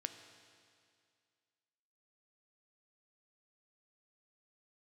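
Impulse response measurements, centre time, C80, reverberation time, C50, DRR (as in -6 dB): 26 ms, 10.0 dB, 2.2 s, 9.0 dB, 7.5 dB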